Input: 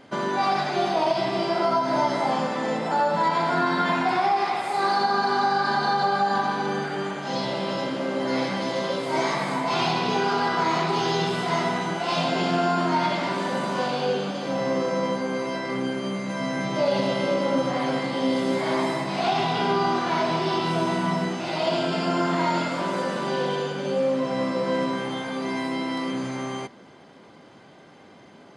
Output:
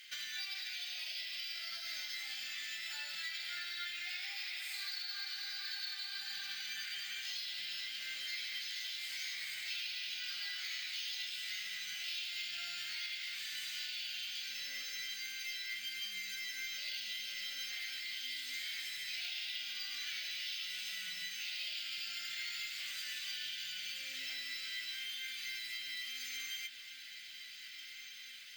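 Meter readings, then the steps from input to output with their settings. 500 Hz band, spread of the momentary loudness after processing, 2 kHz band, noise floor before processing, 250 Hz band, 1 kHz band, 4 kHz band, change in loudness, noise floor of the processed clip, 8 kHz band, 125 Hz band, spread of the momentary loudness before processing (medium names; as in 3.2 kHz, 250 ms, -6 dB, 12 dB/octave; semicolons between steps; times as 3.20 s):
under -40 dB, 2 LU, -11.0 dB, -49 dBFS, under -40 dB, -38.5 dB, -5.0 dB, -15.0 dB, -50 dBFS, -4.5 dB, under -40 dB, 6 LU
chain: inverse Chebyshev high-pass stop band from 1.1 kHz, stop band 40 dB; compression 6:1, threshold -47 dBFS, peak gain reduction 18 dB; flange 0.21 Hz, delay 6.6 ms, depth 4.9 ms, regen +51%; on a send: echo that smears into a reverb 1562 ms, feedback 72%, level -12 dB; on the sum: careless resampling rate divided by 2×, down filtered, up hold; trim +10.5 dB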